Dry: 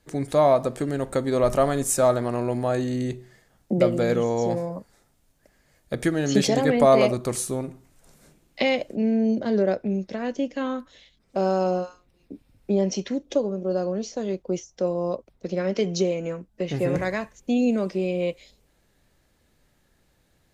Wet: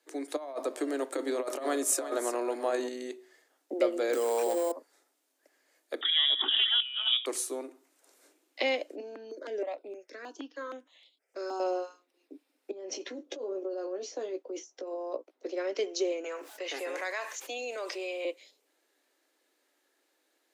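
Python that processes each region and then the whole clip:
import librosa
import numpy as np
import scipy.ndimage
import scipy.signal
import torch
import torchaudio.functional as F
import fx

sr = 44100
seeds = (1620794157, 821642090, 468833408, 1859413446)

y = fx.chain(x, sr, fx.over_compress(threshold_db=-23.0, ratio=-0.5),
    fx.echo_single(ms=348, db=-11.5), at=(0.36, 2.89))
y = fx.chain(y, sr, fx.hum_notches(base_hz=50, count=7),
    fx.sample_hold(seeds[0], rate_hz=8100.0, jitter_pct=0),
    fx.env_flatten(amount_pct=100), at=(4.13, 4.72))
y = fx.chain(y, sr, fx.freq_invert(carrier_hz=3600),
    fx.over_compress(threshold_db=-22.0, ratio=-0.5),
    fx.peak_eq(hz=520.0, db=-9.0, octaves=0.51), at=(6.01, 7.26))
y = fx.chain(y, sr, fx.highpass(hz=320.0, slope=6),
    fx.phaser_held(hz=6.4, low_hz=540.0, high_hz=6000.0), at=(9.0, 11.6))
y = fx.chain(y, sr, fx.high_shelf(hz=2700.0, db=-6.5),
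    fx.over_compress(threshold_db=-29.0, ratio=-1.0),
    fx.doubler(ms=16.0, db=-8), at=(12.71, 15.51))
y = fx.chain(y, sr, fx.highpass(hz=720.0, slope=12),
    fx.env_flatten(amount_pct=70), at=(16.24, 18.25))
y = scipy.signal.sosfilt(scipy.signal.butter(12, 280.0, 'highpass', fs=sr, output='sos'), y)
y = fx.peak_eq(y, sr, hz=590.0, db=-2.0, octaves=2.0)
y = y * librosa.db_to_amplitude(-4.5)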